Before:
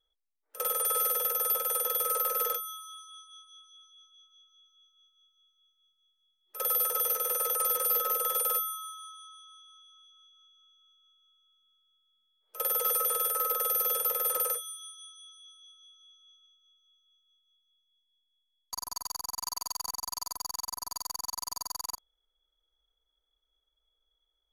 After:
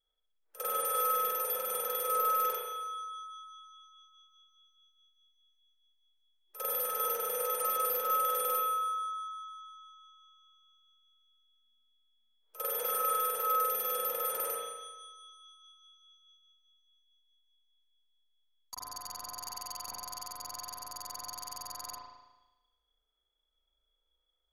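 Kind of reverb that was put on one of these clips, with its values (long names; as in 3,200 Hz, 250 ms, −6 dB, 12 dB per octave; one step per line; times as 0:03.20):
spring reverb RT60 1.1 s, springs 36 ms, chirp 70 ms, DRR −5 dB
level −6.5 dB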